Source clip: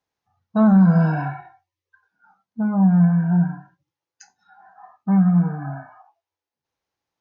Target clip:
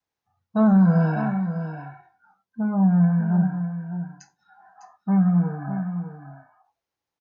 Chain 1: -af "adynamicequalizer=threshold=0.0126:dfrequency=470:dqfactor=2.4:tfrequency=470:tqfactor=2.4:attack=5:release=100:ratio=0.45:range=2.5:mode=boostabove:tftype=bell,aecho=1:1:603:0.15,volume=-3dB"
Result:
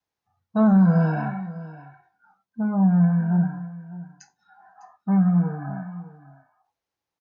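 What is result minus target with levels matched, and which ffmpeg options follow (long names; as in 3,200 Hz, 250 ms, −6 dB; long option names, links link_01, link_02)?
echo-to-direct −7 dB
-af "adynamicequalizer=threshold=0.0126:dfrequency=470:dqfactor=2.4:tfrequency=470:tqfactor=2.4:attack=5:release=100:ratio=0.45:range=2.5:mode=boostabove:tftype=bell,aecho=1:1:603:0.335,volume=-3dB"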